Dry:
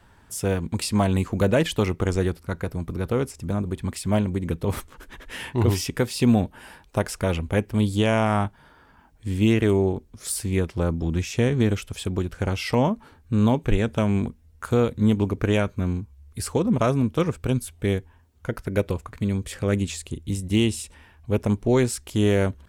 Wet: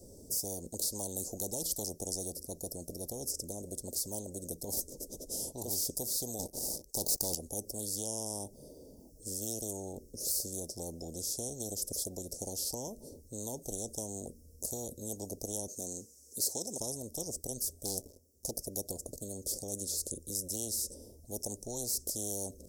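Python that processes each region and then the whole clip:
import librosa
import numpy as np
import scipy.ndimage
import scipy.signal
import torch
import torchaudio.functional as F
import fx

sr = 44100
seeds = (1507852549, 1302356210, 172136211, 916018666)

y = fx.chain(x, sr, fx.notch(hz=3300.0, q=6.6),
    fx.leveller(passes=3), at=(6.39, 7.35))
y = fx.chain(y, sr, fx.highpass(hz=280.0, slope=12),
    fx.peak_eq(hz=6800.0, db=13.5, octaves=1.4), at=(15.68, 16.8))
y = fx.chain(y, sr, fx.low_shelf(hz=420.0, db=-5.5),
    fx.leveller(passes=3),
    fx.doppler_dist(depth_ms=0.21), at=(17.85, 18.51))
y = scipy.signal.sosfilt(scipy.signal.cheby1(4, 1.0, [560.0, 5400.0], 'bandstop', fs=sr, output='sos'), y)
y = fx.bass_treble(y, sr, bass_db=-13, treble_db=1)
y = fx.spectral_comp(y, sr, ratio=4.0)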